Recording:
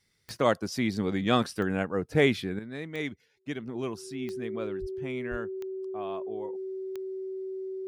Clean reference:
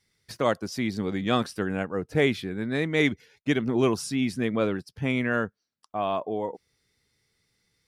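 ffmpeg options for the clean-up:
-filter_complex "[0:a]adeclick=t=4,bandreject=f=380:w=30,asplit=3[s0][s1][s2];[s0]afade=t=out:st=4.8:d=0.02[s3];[s1]highpass=f=140:w=0.5412,highpass=f=140:w=1.3066,afade=t=in:st=4.8:d=0.02,afade=t=out:st=4.92:d=0.02[s4];[s2]afade=t=in:st=4.92:d=0.02[s5];[s3][s4][s5]amix=inputs=3:normalize=0,asplit=3[s6][s7][s8];[s6]afade=t=out:st=5.3:d=0.02[s9];[s7]highpass=f=140:w=0.5412,highpass=f=140:w=1.3066,afade=t=in:st=5.3:d=0.02,afade=t=out:st=5.42:d=0.02[s10];[s8]afade=t=in:st=5.42:d=0.02[s11];[s9][s10][s11]amix=inputs=3:normalize=0,asetnsamples=n=441:p=0,asendcmd='2.59 volume volume 11dB',volume=1"

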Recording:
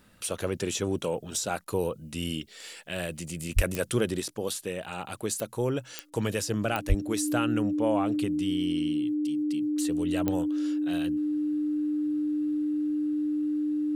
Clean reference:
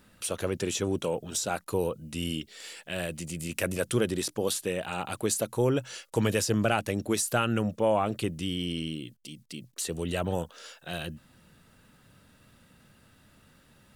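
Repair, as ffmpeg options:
-filter_complex "[0:a]adeclick=t=4,bandreject=f=300:w=30,asplit=3[s0][s1][s2];[s0]afade=t=out:st=3.55:d=0.02[s3];[s1]highpass=f=140:w=0.5412,highpass=f=140:w=1.3066,afade=t=in:st=3.55:d=0.02,afade=t=out:st=3.67:d=0.02[s4];[s2]afade=t=in:st=3.67:d=0.02[s5];[s3][s4][s5]amix=inputs=3:normalize=0,asplit=3[s6][s7][s8];[s6]afade=t=out:st=6.88:d=0.02[s9];[s7]highpass=f=140:w=0.5412,highpass=f=140:w=1.3066,afade=t=in:st=6.88:d=0.02,afade=t=out:st=7:d=0.02[s10];[s8]afade=t=in:st=7:d=0.02[s11];[s9][s10][s11]amix=inputs=3:normalize=0,asetnsamples=n=441:p=0,asendcmd='4.2 volume volume 3dB',volume=1"

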